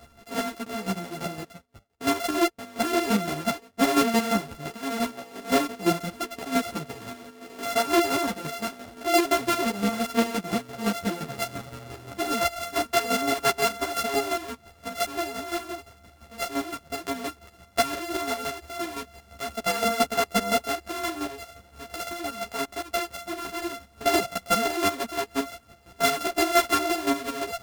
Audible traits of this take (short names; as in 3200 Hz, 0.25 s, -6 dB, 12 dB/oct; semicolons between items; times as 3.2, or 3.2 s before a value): a buzz of ramps at a fixed pitch in blocks of 64 samples; chopped level 5.8 Hz, depth 60%, duty 30%; a shimmering, thickened sound